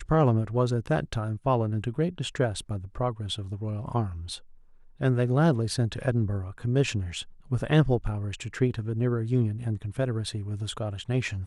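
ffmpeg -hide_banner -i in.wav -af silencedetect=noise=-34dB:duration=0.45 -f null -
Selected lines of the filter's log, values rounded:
silence_start: 4.36
silence_end: 5.01 | silence_duration: 0.65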